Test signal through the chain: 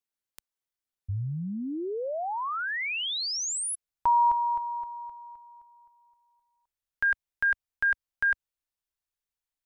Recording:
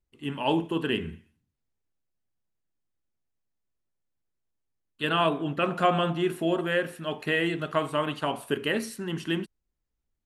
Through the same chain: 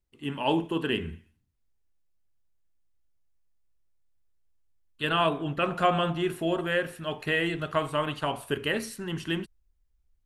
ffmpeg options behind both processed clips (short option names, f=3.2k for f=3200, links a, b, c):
-af "asubboost=boost=5:cutoff=90"